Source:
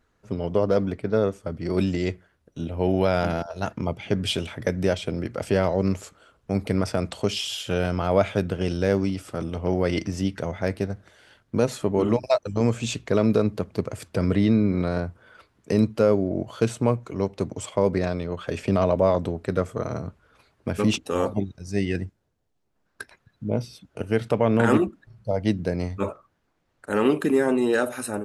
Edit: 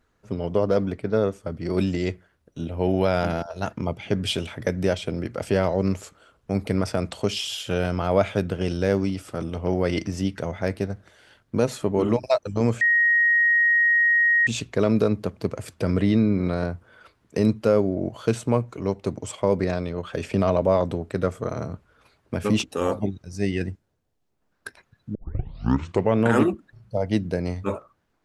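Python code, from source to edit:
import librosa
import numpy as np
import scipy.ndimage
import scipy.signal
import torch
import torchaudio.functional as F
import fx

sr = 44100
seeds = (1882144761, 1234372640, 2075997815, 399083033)

y = fx.edit(x, sr, fx.insert_tone(at_s=12.81, length_s=1.66, hz=1880.0, db=-15.5),
    fx.tape_start(start_s=23.49, length_s=0.99), tone=tone)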